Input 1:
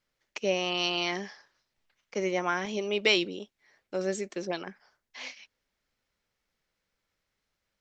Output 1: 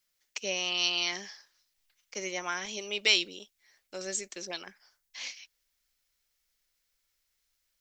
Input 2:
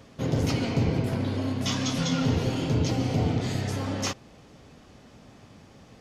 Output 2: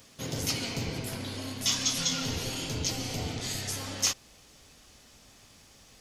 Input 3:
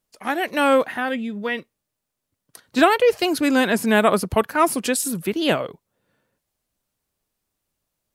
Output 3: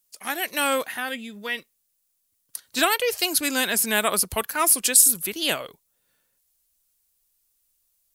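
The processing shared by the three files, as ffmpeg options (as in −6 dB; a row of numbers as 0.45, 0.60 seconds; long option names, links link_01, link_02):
-af "asubboost=boost=4:cutoff=63,crystalizer=i=8:c=0,volume=-10dB"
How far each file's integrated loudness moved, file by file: −1.0, −3.5, −1.0 LU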